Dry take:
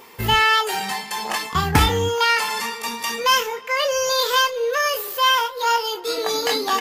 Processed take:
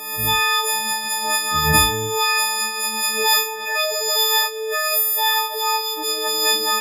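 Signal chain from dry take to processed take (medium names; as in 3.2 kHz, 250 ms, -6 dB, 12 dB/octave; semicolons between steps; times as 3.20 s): partials quantised in pitch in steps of 6 st; swell ahead of each attack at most 53 dB/s; trim -4.5 dB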